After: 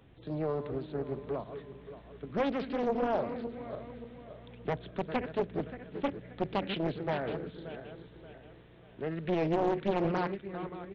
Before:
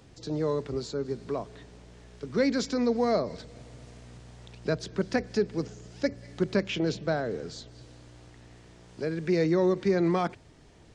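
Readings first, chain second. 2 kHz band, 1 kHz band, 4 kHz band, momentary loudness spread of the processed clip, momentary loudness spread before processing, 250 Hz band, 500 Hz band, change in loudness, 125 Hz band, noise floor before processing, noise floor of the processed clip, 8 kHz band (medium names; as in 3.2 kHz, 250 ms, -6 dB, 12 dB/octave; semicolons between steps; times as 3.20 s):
-5.0 dB, +0.5 dB, -6.5 dB, 18 LU, 20 LU, -5.5 dB, -4.5 dB, -5.5 dB, -4.5 dB, -54 dBFS, -55 dBFS, under -20 dB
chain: backward echo that repeats 289 ms, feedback 61%, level -9.5 dB; resampled via 8 kHz; loudspeaker Doppler distortion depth 0.75 ms; trim -4.5 dB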